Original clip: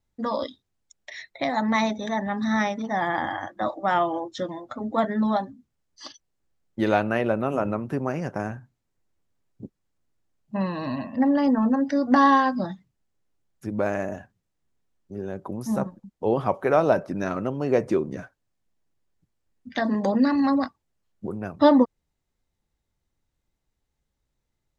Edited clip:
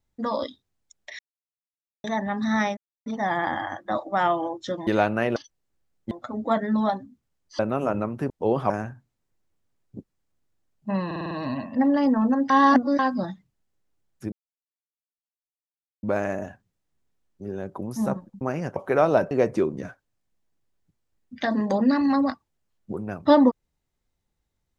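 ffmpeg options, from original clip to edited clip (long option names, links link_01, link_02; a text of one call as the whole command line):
ffmpeg -i in.wav -filter_complex "[0:a]asplit=21[link_01][link_02][link_03][link_04][link_05][link_06][link_07][link_08][link_09][link_10][link_11][link_12][link_13][link_14][link_15][link_16][link_17][link_18][link_19][link_20][link_21];[link_01]atrim=end=1.19,asetpts=PTS-STARTPTS,afade=type=out:start_time=1.186:duration=0.004:curve=hsin[link_22];[link_02]atrim=start=1.19:end=2.04,asetpts=PTS-STARTPTS,volume=0[link_23];[link_03]atrim=start=2.04:end=2.77,asetpts=PTS-STARTPTS,afade=type=in:duration=0.004:curve=hsin,afade=type=out:start_time=0.726:duration=0.004:curve=hsin,apad=pad_dur=0.29[link_24];[link_04]atrim=start=2.77:end=4.582,asetpts=PTS-STARTPTS,afade=type=in:duration=0.004:curve=hsin[link_25];[link_05]atrim=start=6.808:end=7.302[link_26];[link_06]atrim=start=6.058:end=6.812[link_27];[link_07]atrim=start=4.578:end=6.062[link_28];[link_08]atrim=start=7.298:end=8.012[link_29];[link_09]atrim=start=16.108:end=16.512[link_30];[link_10]atrim=start=8.358:end=10.772[link_31];[link_11]atrim=start=10.718:end=10.772[link_32];[link_12]atrim=start=10.718:end=10.772[link_33];[link_13]atrim=start=10.718:end=10.772[link_34];[link_14]atrim=start=10.718:end=10.772[link_35];[link_15]atrim=start=10.718:end=11.912[link_36];[link_16]atrim=start=11.908:end=12.402,asetpts=PTS-STARTPTS,areverse[link_37];[link_17]atrim=start=12.398:end=13.73,asetpts=PTS-STARTPTS,afade=type=out:start_time=1.328:duration=0.004:curve=hsin,apad=pad_dur=1.71[link_38];[link_18]atrim=start=13.73:end=16.112,asetpts=PTS-STARTPTS,afade=type=in:duration=0.004:curve=hsin[link_39];[link_19]atrim=start=8.008:end=8.362[link_40];[link_20]atrim=start=16.508:end=17.062[link_41];[link_21]atrim=start=17.648[link_42];[link_22][link_23][link_24][link_25]concat=n=4:v=0:a=1[link_43];[link_43][link_26]acrossfade=duration=0.004:curve1=hsin:curve2=hsin[link_44];[link_44][link_27]acrossfade=duration=0.004:curve1=hsin:curve2=hsin[link_45];[link_45][link_28]acrossfade=duration=0.004:curve1=hsin:curve2=hsin[link_46];[link_46][link_29]acrossfade=duration=0.004:curve1=hsin:curve2=hsin[link_47];[link_47][link_30]acrossfade=duration=0.004:curve1=hsin:curve2=hsin[link_48];[link_48][link_31]acrossfade=duration=0.004:curve1=hsin:curve2=hsin[link_49];[link_49][link_32]acrossfade=duration=0.004:curve1=hsin:curve2=hsin[link_50];[link_50][link_33]acrossfade=duration=0.004:curve1=hsin:curve2=hsin[link_51];[link_51][link_34]acrossfade=duration=0.004:curve1=hsin:curve2=hsin[link_52];[link_52][link_35]acrossfade=duration=0.004:curve1=hsin:curve2=hsin[link_53];[link_53][link_36]acrossfade=duration=0.004:curve1=hsin:curve2=hsin[link_54];[link_54][link_37]acrossfade=duration=0.004:curve1=hsin:curve2=hsin[link_55];[link_38][link_39]concat=n=2:v=0:a=1[link_56];[link_55][link_56]acrossfade=duration=0.004:curve1=hsin:curve2=hsin[link_57];[link_57][link_40]acrossfade=duration=0.004:curve1=hsin:curve2=hsin[link_58];[link_58][link_41]acrossfade=duration=0.004:curve1=hsin:curve2=hsin[link_59];[link_59][link_42]acrossfade=duration=0.004:curve1=hsin:curve2=hsin" out.wav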